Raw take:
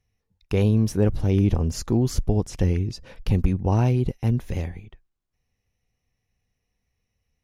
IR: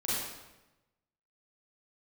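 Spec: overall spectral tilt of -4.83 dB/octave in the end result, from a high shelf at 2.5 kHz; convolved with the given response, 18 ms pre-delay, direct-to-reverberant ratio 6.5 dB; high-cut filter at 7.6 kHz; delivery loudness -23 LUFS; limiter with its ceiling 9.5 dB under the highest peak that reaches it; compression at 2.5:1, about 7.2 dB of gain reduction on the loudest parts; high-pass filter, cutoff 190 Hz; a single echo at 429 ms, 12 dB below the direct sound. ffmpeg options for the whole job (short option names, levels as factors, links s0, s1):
-filter_complex "[0:a]highpass=190,lowpass=7600,highshelf=f=2500:g=8.5,acompressor=threshold=0.0355:ratio=2.5,alimiter=limit=0.0708:level=0:latency=1,aecho=1:1:429:0.251,asplit=2[s0][s1];[1:a]atrim=start_sample=2205,adelay=18[s2];[s1][s2]afir=irnorm=-1:irlink=0,volume=0.224[s3];[s0][s3]amix=inputs=2:normalize=0,volume=3.35"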